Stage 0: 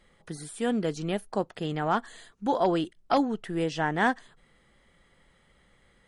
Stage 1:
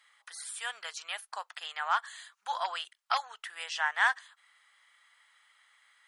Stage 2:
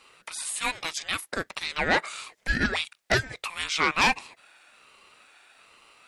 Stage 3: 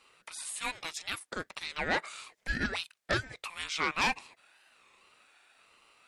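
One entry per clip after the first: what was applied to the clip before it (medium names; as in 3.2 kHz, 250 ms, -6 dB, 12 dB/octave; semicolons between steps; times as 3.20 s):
inverse Chebyshev high-pass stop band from 300 Hz, stop band 60 dB; trim +2.5 dB
sine folder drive 8 dB, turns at -12.5 dBFS; ring modulator with a swept carrier 650 Hz, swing 25%, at 1.2 Hz
warped record 33 1/3 rpm, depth 160 cents; trim -7 dB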